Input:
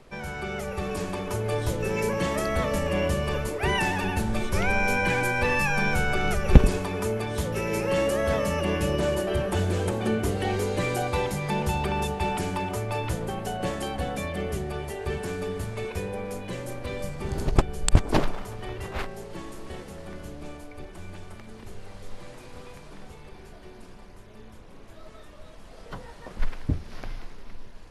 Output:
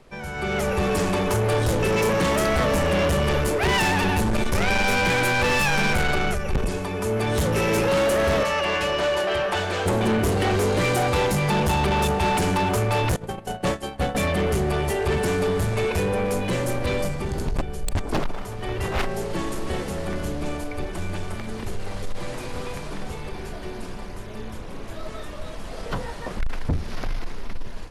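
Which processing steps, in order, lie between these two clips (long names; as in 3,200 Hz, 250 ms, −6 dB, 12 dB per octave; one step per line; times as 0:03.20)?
0:08.43–0:09.86: three-way crossover with the lows and the highs turned down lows −17 dB, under 580 Hz, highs −14 dB, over 5,500 Hz
0:13.16–0:14.15: noise gate −28 dBFS, range −22 dB
automatic gain control gain up to 12.5 dB
soft clipping −18 dBFS, distortion −8 dB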